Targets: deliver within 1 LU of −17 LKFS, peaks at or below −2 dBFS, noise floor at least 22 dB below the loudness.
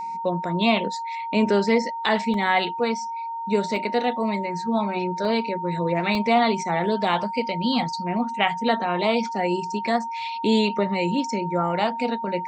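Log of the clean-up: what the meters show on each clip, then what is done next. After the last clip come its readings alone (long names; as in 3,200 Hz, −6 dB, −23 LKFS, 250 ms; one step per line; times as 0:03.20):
number of dropouts 4; longest dropout 1.7 ms; interfering tone 920 Hz; level of the tone −28 dBFS; integrated loudness −23.5 LKFS; sample peak −6.0 dBFS; target loudness −17.0 LKFS
→ repair the gap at 0:02.34/0:03.76/0:05.25/0:06.15, 1.7 ms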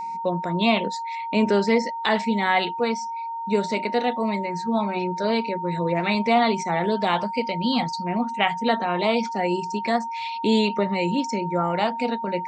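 number of dropouts 0; interfering tone 920 Hz; level of the tone −28 dBFS
→ notch filter 920 Hz, Q 30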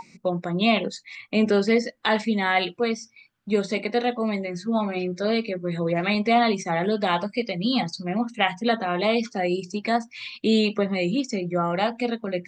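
interfering tone none found; integrated loudness −24.5 LKFS; sample peak −7.0 dBFS; target loudness −17.0 LKFS
→ level +7.5 dB
brickwall limiter −2 dBFS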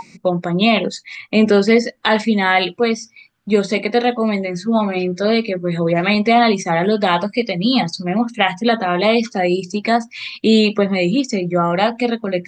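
integrated loudness −17.0 LKFS; sample peak −2.0 dBFS; background noise floor −52 dBFS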